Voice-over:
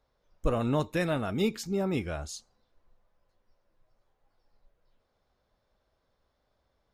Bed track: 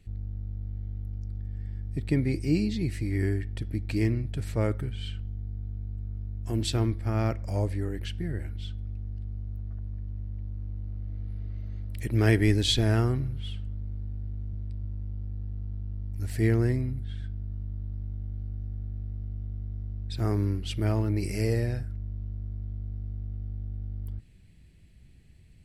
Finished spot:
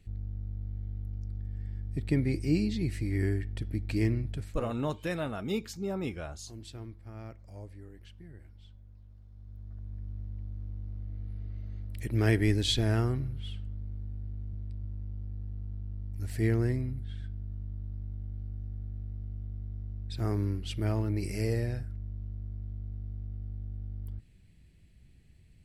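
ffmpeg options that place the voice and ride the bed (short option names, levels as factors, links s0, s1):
-filter_complex "[0:a]adelay=4100,volume=0.596[s0];[1:a]volume=3.98,afade=t=out:st=4.31:d=0.24:silence=0.16788,afade=t=in:st=9.3:d=0.76:silence=0.199526[s1];[s0][s1]amix=inputs=2:normalize=0"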